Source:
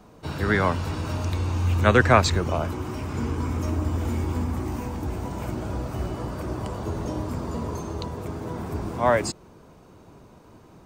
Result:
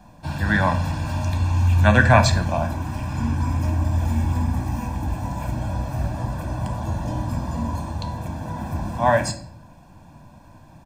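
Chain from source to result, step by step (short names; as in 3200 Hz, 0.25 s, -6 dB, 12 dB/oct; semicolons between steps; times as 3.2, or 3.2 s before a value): comb 1.2 ms, depth 91%; shoebox room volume 93 m³, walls mixed, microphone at 0.37 m; gain -1 dB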